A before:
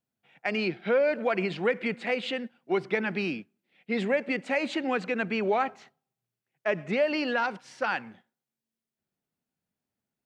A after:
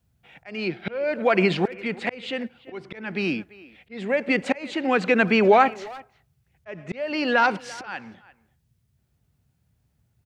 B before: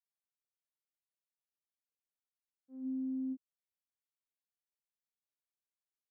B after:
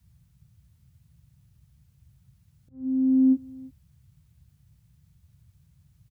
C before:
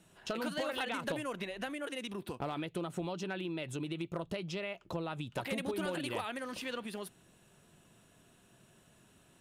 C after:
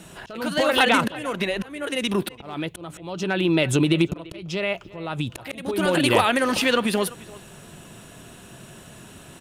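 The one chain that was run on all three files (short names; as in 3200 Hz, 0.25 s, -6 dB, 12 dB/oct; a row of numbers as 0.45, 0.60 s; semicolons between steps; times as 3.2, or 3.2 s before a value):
auto swell 0.593 s; band noise 51–150 Hz -78 dBFS; speakerphone echo 0.34 s, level -19 dB; match loudness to -23 LUFS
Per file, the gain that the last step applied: +10.0, +19.5, +19.5 dB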